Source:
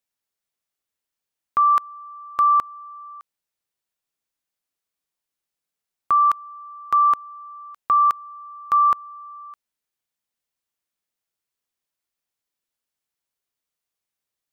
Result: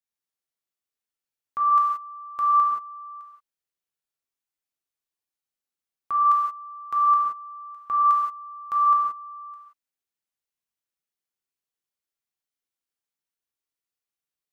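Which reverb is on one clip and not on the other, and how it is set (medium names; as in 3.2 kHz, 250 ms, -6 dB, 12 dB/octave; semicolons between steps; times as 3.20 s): gated-style reverb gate 200 ms flat, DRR -3 dB; trim -11 dB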